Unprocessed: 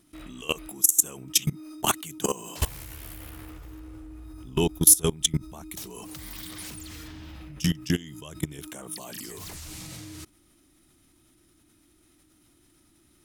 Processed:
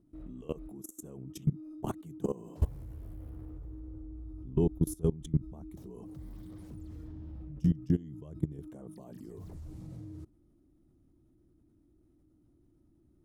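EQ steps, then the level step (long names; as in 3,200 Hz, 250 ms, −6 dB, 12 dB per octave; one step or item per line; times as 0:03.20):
drawn EQ curve 120 Hz 0 dB, 490 Hz −5 dB, 2,500 Hz −29 dB
0.0 dB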